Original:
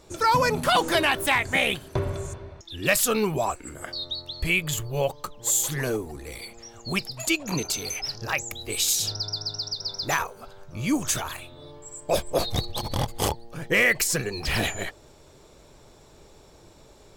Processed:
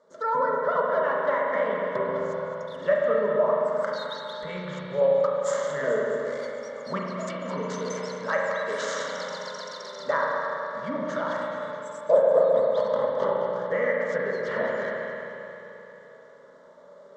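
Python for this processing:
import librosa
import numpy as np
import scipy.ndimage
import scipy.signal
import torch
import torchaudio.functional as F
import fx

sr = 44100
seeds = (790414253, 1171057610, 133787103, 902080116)

y = scipy.ndimage.median_filter(x, 9, mode='constant')
y = fx.env_lowpass_down(y, sr, base_hz=1700.0, full_db=-22.0)
y = fx.rider(y, sr, range_db=5, speed_s=0.5)
y = fx.cabinet(y, sr, low_hz=300.0, low_slope=12, high_hz=6600.0, hz=(330.0, 620.0, 2000.0), db=(-5, 10, 4))
y = fx.fixed_phaser(y, sr, hz=500.0, stages=8)
y = fx.echo_feedback(y, sr, ms=214, feedback_pct=59, wet_db=-11.5)
y = fx.rev_spring(y, sr, rt60_s=3.0, pass_ms=(33, 44), chirp_ms=75, drr_db=-2.0)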